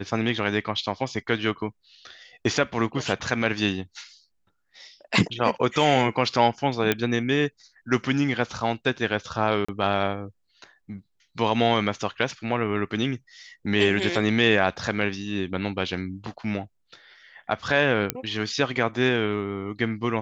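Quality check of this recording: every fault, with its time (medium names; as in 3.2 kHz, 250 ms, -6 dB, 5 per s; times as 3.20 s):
6.92 s: pop -7 dBFS
9.65–9.69 s: dropout 35 ms
18.10 s: pop -5 dBFS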